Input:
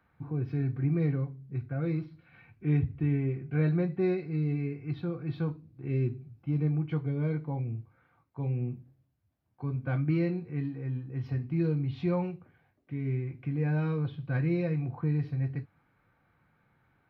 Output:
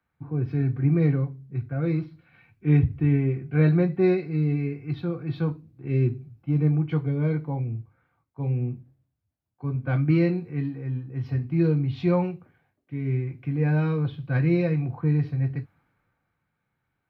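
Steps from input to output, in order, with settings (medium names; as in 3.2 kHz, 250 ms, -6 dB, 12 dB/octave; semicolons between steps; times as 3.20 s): three bands expanded up and down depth 40%; trim +6 dB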